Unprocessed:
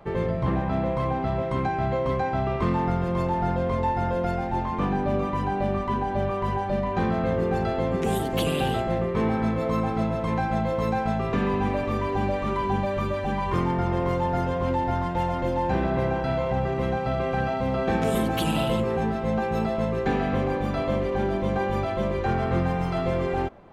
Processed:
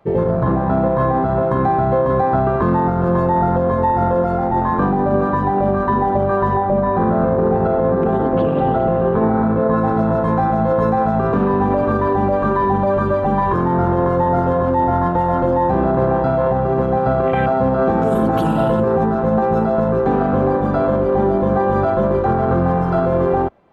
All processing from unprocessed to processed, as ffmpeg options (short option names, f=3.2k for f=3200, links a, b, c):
-filter_complex "[0:a]asettb=1/sr,asplit=3[a][b][c];[a]atrim=end=6.574[d];[b]atrim=start=6.57:end=9.77,asetpts=PTS-STARTPTS,afade=t=in:d=0.004:c=qsin,afade=t=out:st=3.196:d=0.004:c=qsin,lowpass=2.6k,aecho=1:1:414:0.316,atrim=end_sample=141120[e];[c]atrim=start=9.766[f];[d][e]acrossfade=d=0.004:c1=hsin:c2=qsin[g];[g][f]acrossfade=d=0.004:c1=qsin:c2=hsin,lowshelf=f=87:g=-9.5,afwtdn=0.0316,alimiter=level_in=19dB:limit=-1dB:release=50:level=0:latency=1,volume=-7dB"